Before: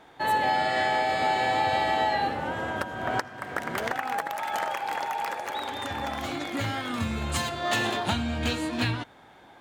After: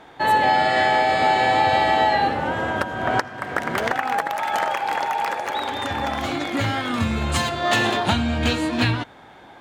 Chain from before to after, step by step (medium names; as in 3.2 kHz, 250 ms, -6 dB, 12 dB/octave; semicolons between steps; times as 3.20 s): treble shelf 8.1 kHz -7 dB; trim +7 dB